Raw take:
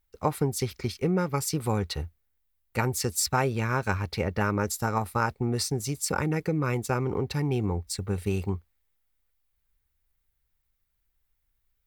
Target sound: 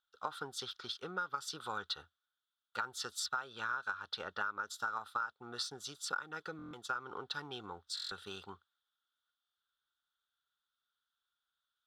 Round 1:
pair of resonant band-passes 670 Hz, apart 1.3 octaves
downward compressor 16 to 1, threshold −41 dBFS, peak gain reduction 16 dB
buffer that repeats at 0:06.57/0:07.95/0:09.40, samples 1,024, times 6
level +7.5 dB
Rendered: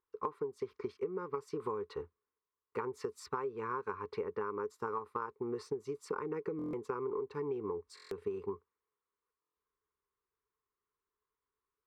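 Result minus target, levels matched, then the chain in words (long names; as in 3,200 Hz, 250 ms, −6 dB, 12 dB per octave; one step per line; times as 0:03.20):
500 Hz band +12.5 dB
pair of resonant band-passes 2,200 Hz, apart 1.3 octaves
downward compressor 16 to 1, threshold −41 dBFS, peak gain reduction 14.5 dB
buffer that repeats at 0:06.57/0:07.95/0:09.40, samples 1,024, times 6
level +7.5 dB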